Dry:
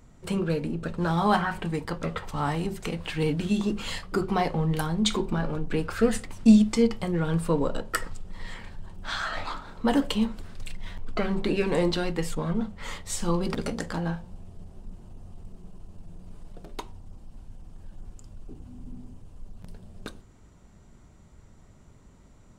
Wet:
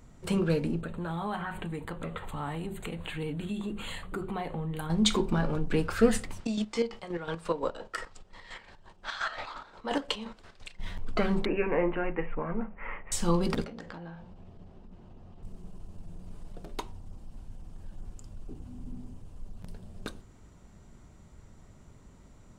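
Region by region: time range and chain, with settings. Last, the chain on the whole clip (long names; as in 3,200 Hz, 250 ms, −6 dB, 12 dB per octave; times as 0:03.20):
0:00.81–0:04.90: downward compressor 2.5 to 1, threshold −35 dBFS + Butterworth band-reject 5,400 Hz, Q 1.7
0:06.40–0:10.80: three-way crossover with the lows and the highs turned down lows −13 dB, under 360 Hz, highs −18 dB, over 7,900 Hz + square-wave tremolo 5.7 Hz, depth 60%, duty 40%
0:11.45–0:13.12: Butterworth low-pass 2,600 Hz 72 dB per octave + parametric band 99 Hz −14 dB 2.1 octaves
0:13.64–0:15.43: low-pass filter 3,700 Hz + downward compressor 16 to 1, threshold −36 dBFS + low-shelf EQ 120 Hz −8.5 dB
whole clip: no processing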